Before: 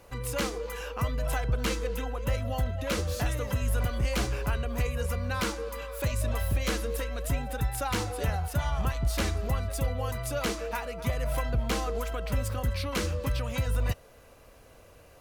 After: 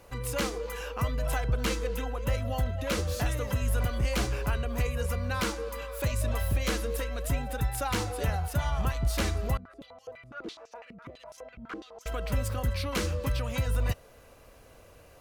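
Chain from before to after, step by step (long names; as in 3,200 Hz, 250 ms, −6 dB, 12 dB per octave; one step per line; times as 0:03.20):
0:09.57–0:12.06: band-pass on a step sequencer 12 Hz 210–5,900 Hz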